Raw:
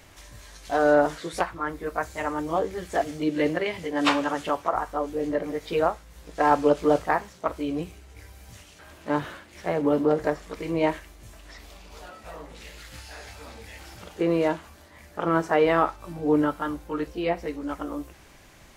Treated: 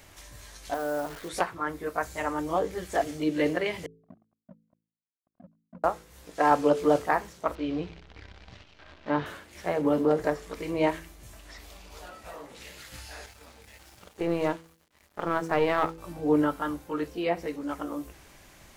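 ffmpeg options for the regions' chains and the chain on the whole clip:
ffmpeg -i in.wav -filter_complex "[0:a]asettb=1/sr,asplit=3[link_01][link_02][link_03];[link_01]atrim=end=0.744[link_04];[link_02]atrim=start=0.74:end=1.29,asetpts=PTS-STARTPTS,afade=type=in:duration=0.004:curve=qsin,afade=type=out:start_time=0.546:duration=0.004:curve=qsin,lowpass=2400,acompressor=threshold=-33dB:ratio=2:attack=3.2:release=140:knee=1:detection=peak,acrusher=bits=8:dc=4:mix=0:aa=0.000001[link_05];[link_03]atrim=start=1.286[link_06];[link_04][link_05]acrossfade=duration=0.004:curve1=hsin:curve2=qsin[link_07];[link_07][link_06]acrossfade=duration=0.004:curve1=qsin:curve2=hsin,asettb=1/sr,asplit=3[link_08][link_09][link_10];[link_08]atrim=end=3.864[link_11];[link_09]atrim=start=3.86:end=5.84,asetpts=PTS-STARTPTS,afade=type=in:duration=0.004:curve=qsin,afade=type=out:start_time=1.976:duration=0.004:curve=qsin,asuperpass=centerf=210:order=20:qfactor=2.4,acrusher=bits=6:mix=0:aa=0.5[link_12];[link_10]atrim=start=5.836[link_13];[link_11][link_12]acrossfade=duration=0.004:curve1=hsin:curve2=qsin[link_14];[link_14][link_13]acrossfade=duration=0.004:curve1=qsin:curve2=hsin,asettb=1/sr,asplit=3[link_15][link_16][link_17];[link_15]atrim=end=7.554[link_18];[link_16]atrim=start=7.55:end=9.26,asetpts=PTS-STARTPTS,afade=type=in:duration=0.004:curve=qsin,afade=type=out:start_time=1.706:duration=0.004:curve=qsin,acrusher=bits=8:dc=4:mix=0:aa=0.000001,lowpass=frequency=4300:width=0.5412,lowpass=frequency=4300:width=1.3066[link_19];[link_17]atrim=start=9.256[link_20];[link_18][link_19]acrossfade=duration=0.004:curve1=hsin:curve2=qsin[link_21];[link_21][link_20]acrossfade=duration=0.004:curve1=qsin:curve2=hsin,asettb=1/sr,asplit=3[link_22][link_23][link_24];[link_22]atrim=end=13.264[link_25];[link_23]atrim=start=13.26:end=15.98,asetpts=PTS-STARTPTS,afade=type=in:duration=0.004:curve=qsin,afade=type=out:start_time=2.716:duration=0.004:curve=qsin,aeval=exprs='sgn(val(0))*max(abs(val(0))-0.00422,0)':channel_layout=same,aeval=exprs='(tanh(3.55*val(0)+0.6)-tanh(0.6))/3.55':channel_layout=same[link_26];[link_24]atrim=start=15.976[link_27];[link_25][link_26]acrossfade=duration=0.004:curve1=hsin:curve2=qsin[link_28];[link_28][link_27]acrossfade=duration=0.004:curve1=qsin:curve2=hsin,highshelf=frequency=8100:gain=5,bandreject=frequency=54.67:width_type=h:width=4,bandreject=frequency=109.34:width_type=h:width=4,bandreject=frequency=164.01:width_type=h:width=4,bandreject=frequency=218.68:width_type=h:width=4,bandreject=frequency=273.35:width_type=h:width=4,bandreject=frequency=328.02:width_type=h:width=4,bandreject=frequency=382.69:width_type=h:width=4,bandreject=frequency=437.36:width_type=h:width=4,bandreject=frequency=492.03:width_type=h:width=4,volume=-1.5dB" out.wav

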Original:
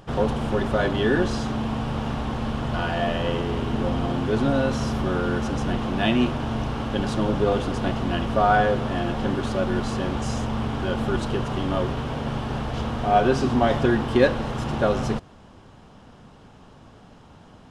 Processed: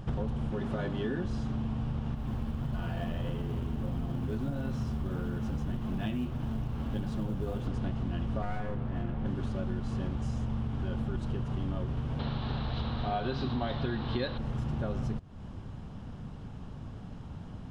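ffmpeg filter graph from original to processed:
ffmpeg -i in.wav -filter_complex "[0:a]asettb=1/sr,asplit=3[link_01][link_02][link_03];[link_01]atrim=end=0.504[link_04];[link_02]atrim=start=0.5:end=1.25,asetpts=PTS-STARTPTS,afade=type=in:duration=0.004:curve=qsin,afade=type=out:start_time=0.746:duration=0.004:curve=qsin,highpass=frequency=130:width=0.5412,highpass=frequency=130:width=1.3066,aeval=exprs='val(0)+0.0141*(sin(2*PI*50*n/s)+sin(2*PI*2*50*n/s)/2+sin(2*PI*3*50*n/s)/3+sin(2*PI*4*50*n/s)/4+sin(2*PI*5*50*n/s)/5)':channel_layout=same,asplit=2[link_05][link_06];[link_06]adelay=12,volume=-10.5dB[link_07];[link_05][link_07]amix=inputs=2:normalize=0,atrim=end_sample=33075[link_08];[link_03]atrim=start=1.246[link_09];[link_04][link_08]acrossfade=duration=0.004:curve1=hsin:curve2=qsin[link_10];[link_10][link_09]acrossfade=duration=0.004:curve1=qsin:curve2=hsin,asettb=1/sr,asplit=3[link_11][link_12][link_13];[link_11]atrim=end=2.154[link_14];[link_12]atrim=start=2.15:end=7.67,asetpts=PTS-STARTPTS,afade=type=in:duration=0.004:curve=qsin,afade=type=out:start_time=5.516:duration=0.004:curve=qsin,flanger=delay=4.6:depth=7.9:regen=-40:speed=1.6:shape=sinusoidal,acrusher=bits=6:mode=log:mix=0:aa=0.000001[link_15];[link_13]atrim=start=7.666[link_16];[link_14][link_15]acrossfade=duration=0.004:curve1=hsin:curve2=qsin[link_17];[link_17][link_16]acrossfade=duration=0.004:curve1=qsin:curve2=hsin,asettb=1/sr,asplit=3[link_18][link_19][link_20];[link_18]atrim=end=8.424[link_21];[link_19]atrim=start=8.42:end=9.26,asetpts=PTS-STARTPTS,afade=type=in:duration=0.004:curve=qsin,afade=type=out:start_time=0.836:duration=0.004:curve=qsin,lowpass=2500,aeval=exprs='clip(val(0),-1,0.0501)':channel_layout=same[link_22];[link_20]atrim=start=9.256[link_23];[link_21][link_22]acrossfade=duration=0.004:curve1=hsin:curve2=qsin[link_24];[link_24][link_23]acrossfade=duration=0.004:curve1=qsin:curve2=hsin,asettb=1/sr,asplit=3[link_25][link_26][link_27];[link_25]atrim=end=12.194[link_28];[link_26]atrim=start=12.19:end=14.38,asetpts=PTS-STARTPTS,afade=type=in:duration=0.004:curve=qsin,afade=type=out:start_time=2.186:duration=0.004:curve=qsin,lowpass=frequency=4000:width_type=q:width=9.1,equalizer=frequency=1100:width=0.44:gain=7[link_29];[link_27]atrim=start=14.376[link_30];[link_28][link_29]acrossfade=duration=0.004:curve1=hsin:curve2=qsin[link_31];[link_31][link_30]acrossfade=duration=0.004:curve1=qsin:curve2=hsin,bass=frequency=250:gain=13,treble=frequency=4000:gain=-2,acompressor=threshold=-27dB:ratio=6,volume=-3.5dB" out.wav

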